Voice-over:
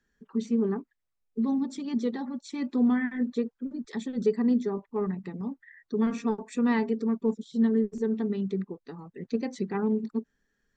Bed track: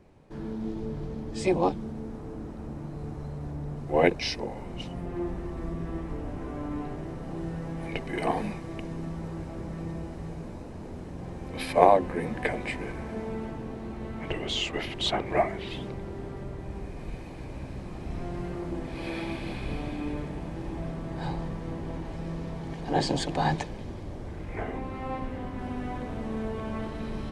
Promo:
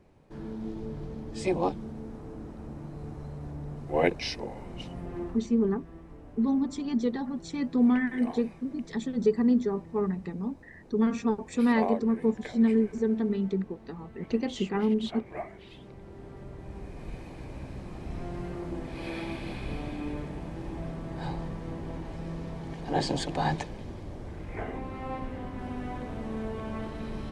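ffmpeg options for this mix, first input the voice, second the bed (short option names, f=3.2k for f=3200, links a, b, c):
-filter_complex "[0:a]adelay=5000,volume=1dB[a];[1:a]volume=8dB,afade=t=out:st=5.17:d=0.31:silence=0.316228,afade=t=in:st=15.77:d=1.4:silence=0.281838[b];[a][b]amix=inputs=2:normalize=0"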